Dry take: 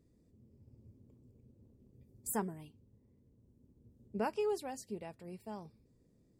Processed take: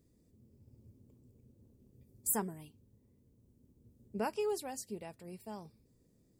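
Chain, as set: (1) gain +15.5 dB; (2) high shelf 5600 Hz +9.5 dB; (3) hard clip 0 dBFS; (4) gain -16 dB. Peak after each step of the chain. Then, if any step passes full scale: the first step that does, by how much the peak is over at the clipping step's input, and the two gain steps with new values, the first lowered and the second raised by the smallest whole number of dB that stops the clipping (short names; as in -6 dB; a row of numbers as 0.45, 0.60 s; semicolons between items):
-8.0, -3.0, -3.0, -19.0 dBFS; no overload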